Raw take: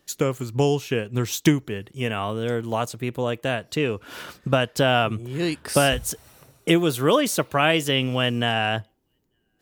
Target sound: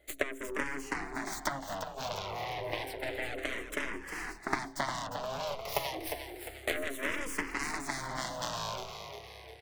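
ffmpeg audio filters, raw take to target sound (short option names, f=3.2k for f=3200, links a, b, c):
-filter_complex "[0:a]aeval=exprs='(tanh(2.82*val(0)+0.75)-tanh(0.75))/2.82':c=same,bandreject=f=60:t=h:w=6,bandreject=f=120:t=h:w=6,bandreject=f=180:t=h:w=6,bandreject=f=240:t=h:w=6,afreqshift=270,apsyclip=14.5dB,acompressor=threshold=-18dB:ratio=6,highpass=f=190:w=0.5412,highpass=f=190:w=1.3066,aeval=exprs='0.422*(cos(1*acos(clip(val(0)/0.422,-1,1)))-cos(1*PI/2))+0.0944*(cos(2*acos(clip(val(0)/0.422,-1,1)))-cos(2*PI/2))+0.168*(cos(3*acos(clip(val(0)/0.422,-1,1)))-cos(3*PI/2))+0.0237*(cos(7*acos(clip(val(0)/0.422,-1,1)))-cos(7*PI/2))+0.0376*(cos(8*acos(clip(val(0)/0.422,-1,1)))-cos(8*PI/2))':c=same,equalizer=f=315:t=o:w=0.33:g=9,equalizer=f=630:t=o:w=0.33:g=8,equalizer=f=1k:t=o:w=0.33:g=4,equalizer=f=2k:t=o:w=0.33:g=7,aeval=exprs='val(0)+0.001*(sin(2*PI*60*n/s)+sin(2*PI*2*60*n/s)/2+sin(2*PI*3*60*n/s)/3+sin(2*PI*4*60*n/s)/4+sin(2*PI*5*60*n/s)/5)':c=same,asplit=2[a][b];[b]asplit=6[c][d][e][f][g][h];[c]adelay=353,afreqshift=34,volume=-8dB[i];[d]adelay=706,afreqshift=68,volume=-13.5dB[j];[e]adelay=1059,afreqshift=102,volume=-19dB[k];[f]adelay=1412,afreqshift=136,volume=-24.5dB[l];[g]adelay=1765,afreqshift=170,volume=-30.1dB[m];[h]adelay=2118,afreqshift=204,volume=-35.6dB[n];[i][j][k][l][m][n]amix=inputs=6:normalize=0[o];[a][o]amix=inputs=2:normalize=0,asplit=2[p][q];[q]afreqshift=-0.3[r];[p][r]amix=inputs=2:normalize=1,volume=-8.5dB"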